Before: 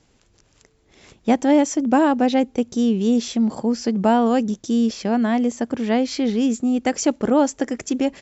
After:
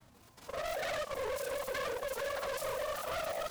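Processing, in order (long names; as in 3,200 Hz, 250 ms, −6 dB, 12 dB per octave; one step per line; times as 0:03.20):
random phases in long frames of 100 ms
high-shelf EQ 5,400 Hz −9 dB
reversed playback
downward compressor, threshold −26 dBFS, peak gain reduction 15.5 dB
reversed playback
hard clipping −33.5 dBFS, distortion −6 dB
granular cloud, pitch spread up and down by 0 semitones
on a send: delay with a high-pass on its return 131 ms, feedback 79%, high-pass 2,600 Hz, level −6.5 dB
on the sum: wrong playback speed 33 rpm record played at 78 rpm
short delay modulated by noise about 1,500 Hz, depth 0.032 ms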